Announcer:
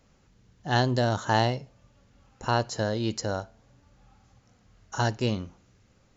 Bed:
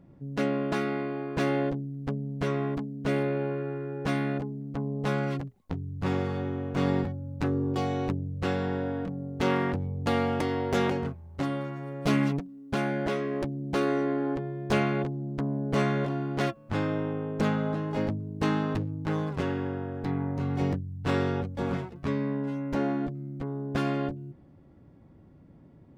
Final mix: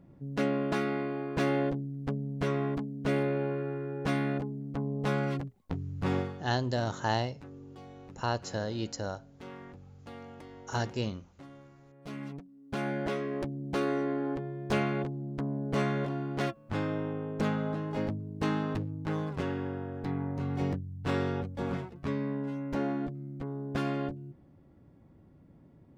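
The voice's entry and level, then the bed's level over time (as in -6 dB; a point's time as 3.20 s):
5.75 s, -6.0 dB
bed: 6.19 s -1.5 dB
6.49 s -20 dB
11.96 s -20 dB
12.89 s -3.5 dB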